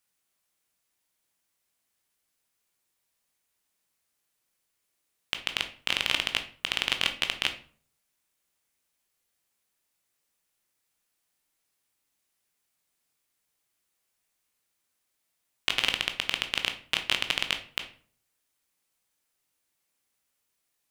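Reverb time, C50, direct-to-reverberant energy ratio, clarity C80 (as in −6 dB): 0.50 s, 11.5 dB, 6.0 dB, 17.0 dB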